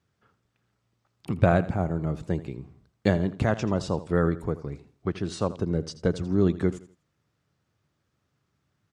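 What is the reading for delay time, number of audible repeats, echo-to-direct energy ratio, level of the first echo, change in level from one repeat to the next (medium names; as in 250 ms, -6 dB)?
82 ms, 2, -15.5 dB, -16.0 dB, -10.0 dB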